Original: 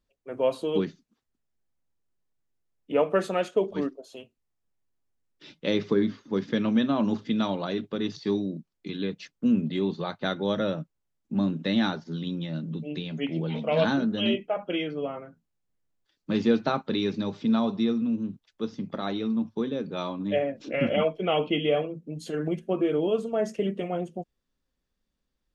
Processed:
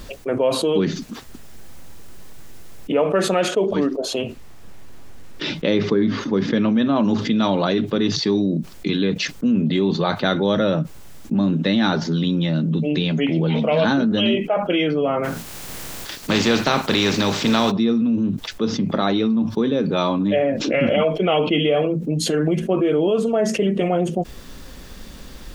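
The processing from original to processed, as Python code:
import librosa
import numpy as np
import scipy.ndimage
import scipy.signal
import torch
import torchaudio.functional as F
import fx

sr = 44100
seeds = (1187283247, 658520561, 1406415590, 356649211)

y = fx.high_shelf(x, sr, hz=4900.0, db=-8.0, at=(3.96, 6.96))
y = fx.spec_flatten(y, sr, power=0.57, at=(15.23, 17.7), fade=0.02)
y = fx.env_flatten(y, sr, amount_pct=70)
y = y * 10.0 ** (2.5 / 20.0)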